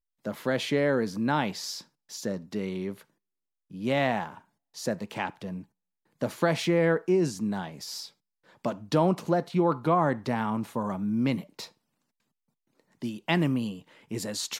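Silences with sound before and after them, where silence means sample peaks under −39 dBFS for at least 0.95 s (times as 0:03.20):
0:11.66–0:13.02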